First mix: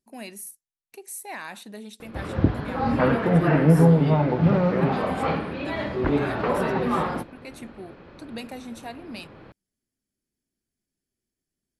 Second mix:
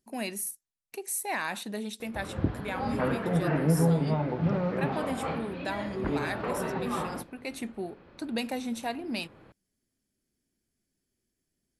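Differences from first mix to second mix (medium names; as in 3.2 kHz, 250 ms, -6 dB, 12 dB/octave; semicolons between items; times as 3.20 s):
speech +4.5 dB; background -8.0 dB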